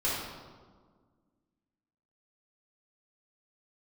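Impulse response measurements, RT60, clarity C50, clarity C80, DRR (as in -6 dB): 1.6 s, -1.0 dB, 2.0 dB, -9.0 dB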